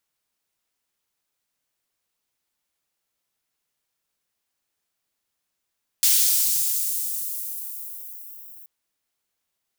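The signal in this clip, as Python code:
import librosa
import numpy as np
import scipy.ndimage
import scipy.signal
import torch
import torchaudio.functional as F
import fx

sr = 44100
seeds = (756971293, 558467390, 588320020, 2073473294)

y = fx.riser_noise(sr, seeds[0], length_s=2.63, colour='white', kind='highpass', start_hz=3800.0, end_hz=16000.0, q=0.78, swell_db=-23.5, law='linear')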